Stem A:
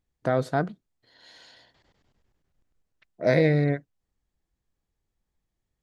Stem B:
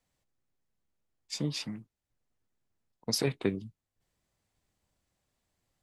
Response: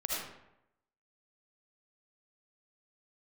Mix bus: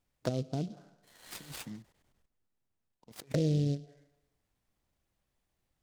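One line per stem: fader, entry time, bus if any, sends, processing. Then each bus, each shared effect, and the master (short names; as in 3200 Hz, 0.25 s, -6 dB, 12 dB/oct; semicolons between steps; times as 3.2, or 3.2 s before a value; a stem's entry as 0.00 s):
-5.5 dB, 0.00 s, muted 2.26–3.34, send -23 dB, high shelf 3100 Hz +6.5 dB
-8.5 dB, 0.00 s, no send, negative-ratio compressor -37 dBFS, ratio -0.5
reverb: on, RT60 0.85 s, pre-delay 35 ms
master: treble ducked by the level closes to 330 Hz, closed at -27.5 dBFS; noise-modulated delay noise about 4100 Hz, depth 0.048 ms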